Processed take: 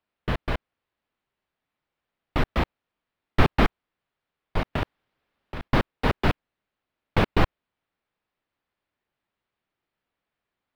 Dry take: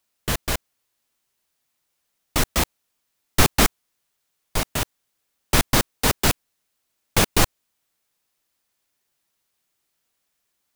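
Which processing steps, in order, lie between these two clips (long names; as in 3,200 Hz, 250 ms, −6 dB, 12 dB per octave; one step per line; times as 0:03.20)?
0:04.73–0:05.68: compressor whose output falls as the input rises −26 dBFS, ratio −1
high-frequency loss of the air 400 metres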